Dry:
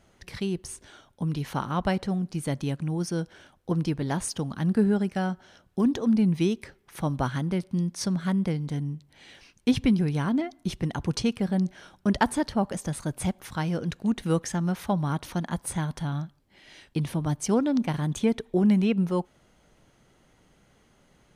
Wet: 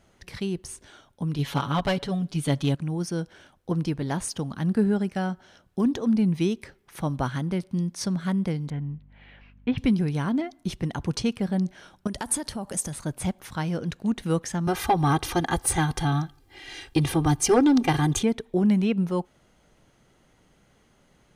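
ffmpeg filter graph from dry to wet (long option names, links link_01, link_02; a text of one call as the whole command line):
ffmpeg -i in.wav -filter_complex "[0:a]asettb=1/sr,asplit=3[link_01][link_02][link_03];[link_01]atrim=end=1.384[link_04];[link_02]atrim=start=1.38:end=2.75,asetpts=PTS-STARTPTS,afade=type=in:duration=0.004:curve=qsin,afade=type=out:start_time=1.366:duration=0.004:curve=qsin,equalizer=frequency=3400:width=2.4:gain=8.5,aecho=1:1:7.1:0.84,atrim=end_sample=60417,aeval=exprs='clip(val(0),-1,0.1)':channel_layout=same[link_05];[link_03]atrim=start=2.746[link_06];[link_04][link_05]acrossfade=duration=0.004:curve1=hsin:curve2=qsin[link_07];[link_07][link_06]acrossfade=duration=0.004:curve1=qsin:curve2=hsin,asettb=1/sr,asplit=3[link_08][link_09][link_10];[link_08]atrim=end=8.704[link_11];[link_09]atrim=start=8.7:end=9.78,asetpts=PTS-STARTPTS,afade=type=in:duration=0.004:curve=qsin,afade=type=out:start_time=1.076:duration=0.004:curve=qsin,lowpass=frequency=2700:width=0.5412,lowpass=frequency=2700:width=1.3066,equalizer=frequency=340:width=1.7:gain=-6.5,aeval=exprs='val(0)+0.00251*(sin(2*PI*50*n/s)+sin(2*PI*2*50*n/s)/2+sin(2*PI*3*50*n/s)/3+sin(2*PI*4*50*n/s)/4+sin(2*PI*5*50*n/s)/5)':channel_layout=same[link_12];[link_10]atrim=start=9.776[link_13];[link_11][link_12]acrossfade=duration=0.004:curve1=hsin:curve2=qsin[link_14];[link_14][link_13]acrossfade=duration=0.004:curve1=qsin:curve2=hsin,asettb=1/sr,asplit=3[link_15][link_16][link_17];[link_15]atrim=end=12.074[link_18];[link_16]atrim=start=12.07:end=12.93,asetpts=PTS-STARTPTS,afade=type=in:duration=0.004:curve=qsin,afade=type=out:start_time=0.856:duration=0.004:curve=qsin,acompressor=threshold=-29dB:ratio=5:attack=3.2:release=140:knee=1:detection=peak,equalizer=frequency=9900:width_type=o:width=1.3:gain=14[link_19];[link_17]atrim=start=12.926[link_20];[link_18][link_19]acrossfade=duration=0.004:curve1=hsin:curve2=qsin[link_21];[link_21][link_20]acrossfade=duration=0.004:curve1=qsin:curve2=hsin,asettb=1/sr,asplit=3[link_22][link_23][link_24];[link_22]atrim=end=14.674[link_25];[link_23]atrim=start=14.67:end=18.23,asetpts=PTS-STARTPTS,afade=type=in:duration=0.004:curve=qsin,afade=type=out:start_time=3.556:duration=0.004:curve=qsin,bandreject=frequency=450:width=9.7,aecho=1:1:2.5:0.99,atrim=end_sample=156996,aeval=exprs='0.224*sin(PI/2*1.41*val(0)/0.224)':channel_layout=same[link_26];[link_24]atrim=start=18.226[link_27];[link_25][link_26]acrossfade=duration=0.004:curve1=hsin:curve2=qsin[link_28];[link_28][link_27]acrossfade=duration=0.004:curve1=qsin:curve2=hsin" out.wav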